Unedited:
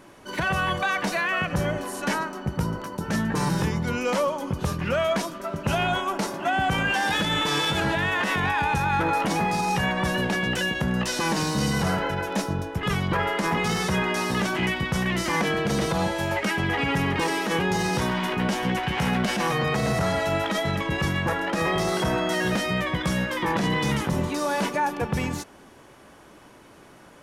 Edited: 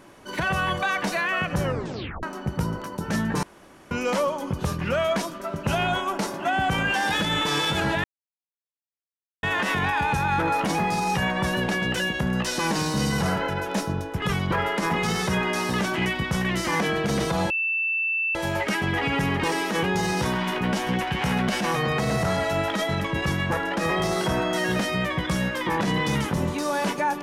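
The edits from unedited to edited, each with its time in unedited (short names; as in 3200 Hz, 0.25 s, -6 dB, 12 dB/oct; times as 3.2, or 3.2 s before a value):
1.62 tape stop 0.61 s
3.43–3.91 room tone
8.04 insert silence 1.39 s
16.11 add tone 2660 Hz -22 dBFS 0.85 s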